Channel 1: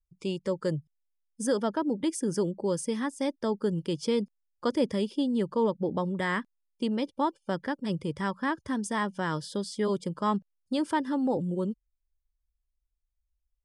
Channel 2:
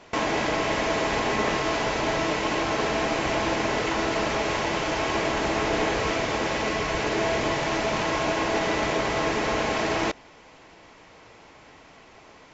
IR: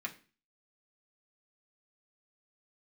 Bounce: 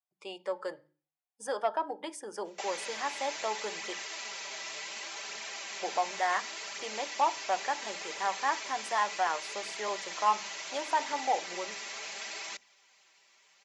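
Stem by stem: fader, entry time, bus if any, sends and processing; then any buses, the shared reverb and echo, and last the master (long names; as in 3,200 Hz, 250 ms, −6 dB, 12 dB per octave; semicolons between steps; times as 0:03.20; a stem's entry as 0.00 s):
−5.5 dB, 0.00 s, muted 0:03.93–0:05.75, send −3.5 dB, high-pass with resonance 740 Hz, resonance Q 4.5; high-shelf EQ 5,800 Hz −9.5 dB
+0.5 dB, 2.45 s, no send, first difference; comb filter 5.1 ms, depth 70%; flanger 0.69 Hz, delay 0.1 ms, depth 8.6 ms, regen +42%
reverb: on, RT60 0.35 s, pre-delay 3 ms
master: mains-hum notches 50/100/150/200/250/300 Hz; saturating transformer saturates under 760 Hz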